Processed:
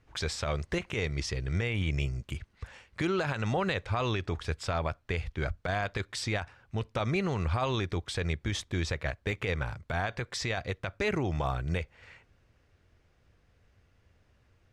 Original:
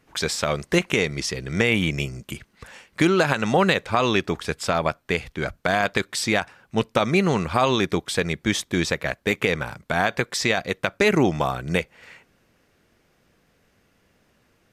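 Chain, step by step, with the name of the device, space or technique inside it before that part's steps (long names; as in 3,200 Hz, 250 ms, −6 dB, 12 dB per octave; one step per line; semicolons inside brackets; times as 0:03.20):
high-frequency loss of the air 54 metres
car stereo with a boomy subwoofer (low shelf with overshoot 130 Hz +10.5 dB, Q 1.5; brickwall limiter −14 dBFS, peak gain reduction 10.5 dB)
level −6.5 dB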